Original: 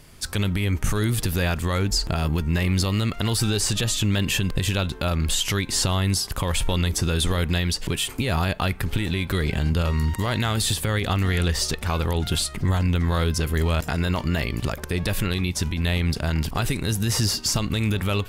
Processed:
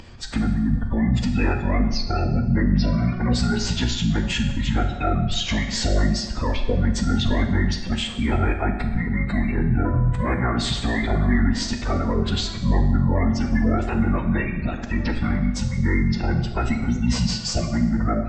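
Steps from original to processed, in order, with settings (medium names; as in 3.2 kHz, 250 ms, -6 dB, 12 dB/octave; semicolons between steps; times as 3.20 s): spectral gate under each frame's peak -30 dB strong; formant-preserving pitch shift -11 st; distance through air 85 m; on a send at -4 dB: reverberation RT60 1.2 s, pre-delay 4 ms; on the sum: upward compressor, threshold -38 dBFS; trim +2 dB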